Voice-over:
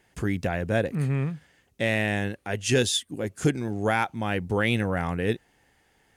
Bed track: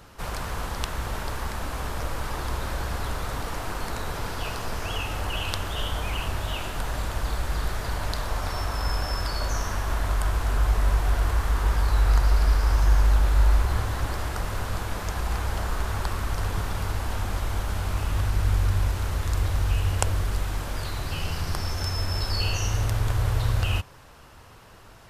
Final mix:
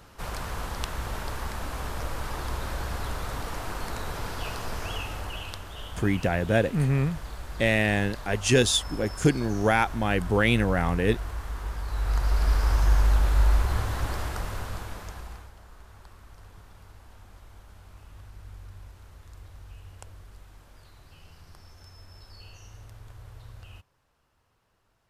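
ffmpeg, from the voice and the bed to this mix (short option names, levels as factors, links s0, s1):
-filter_complex "[0:a]adelay=5800,volume=1.26[s0];[1:a]volume=2.11,afade=t=out:st=4.83:d=0.79:silence=0.398107,afade=t=in:st=11.86:d=0.73:silence=0.354813,afade=t=out:st=14.17:d=1.35:silence=0.0944061[s1];[s0][s1]amix=inputs=2:normalize=0"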